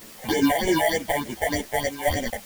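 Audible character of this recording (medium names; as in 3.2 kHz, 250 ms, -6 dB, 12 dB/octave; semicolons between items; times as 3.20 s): aliases and images of a low sample rate 1.3 kHz, jitter 0%; phasing stages 6, 3.3 Hz, lowest notch 300–1300 Hz; a quantiser's noise floor 8-bit, dither triangular; a shimmering, thickened sound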